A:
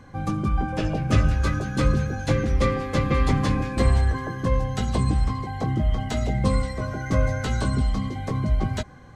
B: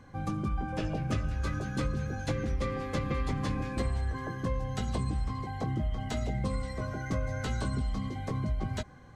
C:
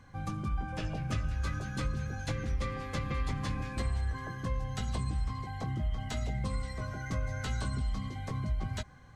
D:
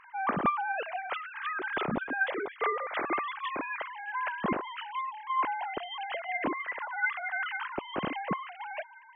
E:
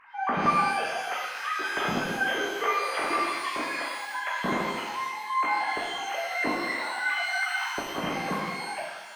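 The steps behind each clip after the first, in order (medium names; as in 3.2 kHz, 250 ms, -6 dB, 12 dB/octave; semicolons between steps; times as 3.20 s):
compression, threshold -21 dBFS, peak gain reduction 8.5 dB; trim -6 dB
peaking EQ 370 Hz -7.5 dB 2.1 oct
formants replaced by sine waves
pitch-shifted reverb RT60 1.2 s, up +12 st, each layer -8 dB, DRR -3.5 dB; trim -1.5 dB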